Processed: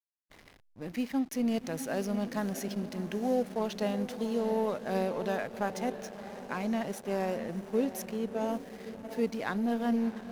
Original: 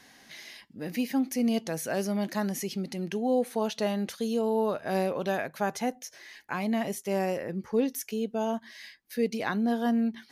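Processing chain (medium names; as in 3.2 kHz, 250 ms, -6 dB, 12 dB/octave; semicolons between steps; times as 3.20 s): echo that smears into a reverb 676 ms, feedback 56%, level -10 dB; hysteresis with a dead band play -35.5 dBFS; trim -3 dB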